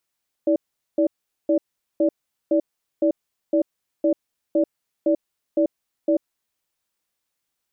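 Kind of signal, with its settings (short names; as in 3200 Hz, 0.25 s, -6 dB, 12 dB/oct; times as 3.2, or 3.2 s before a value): cadence 323 Hz, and 581 Hz, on 0.09 s, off 0.42 s, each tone -18 dBFS 6.02 s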